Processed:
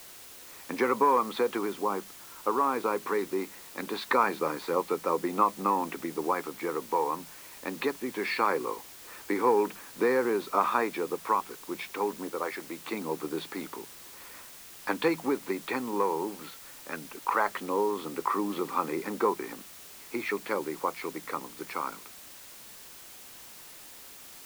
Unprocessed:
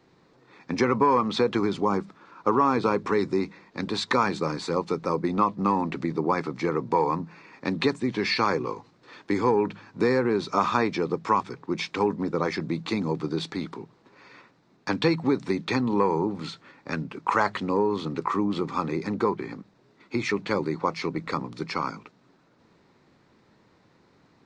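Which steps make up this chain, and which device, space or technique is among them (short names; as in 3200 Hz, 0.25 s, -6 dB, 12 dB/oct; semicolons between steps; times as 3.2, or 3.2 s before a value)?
12.3–12.87 HPF 360 Hz 6 dB/oct; shortwave radio (BPF 350–2700 Hz; tremolo 0.21 Hz, depth 38%; white noise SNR 17 dB)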